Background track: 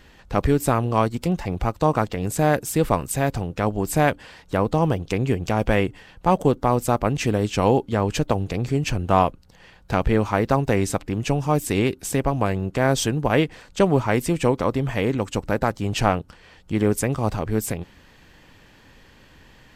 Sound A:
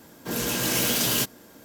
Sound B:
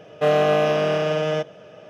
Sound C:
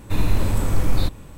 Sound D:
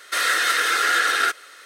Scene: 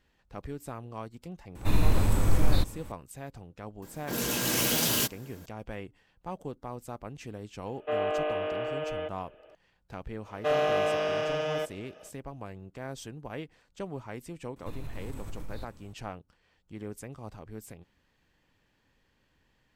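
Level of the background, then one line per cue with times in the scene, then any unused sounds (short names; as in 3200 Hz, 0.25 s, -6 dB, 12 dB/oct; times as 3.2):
background track -20 dB
1.55 add C -3.5 dB
3.82 add A -3 dB
7.66 add B -10.5 dB + elliptic band-pass 300–3000 Hz
10.23 add B -6 dB, fades 0.05 s + HPF 450 Hz 6 dB/oct
14.56 add C -14.5 dB + compressor 3:1, threshold -21 dBFS
not used: D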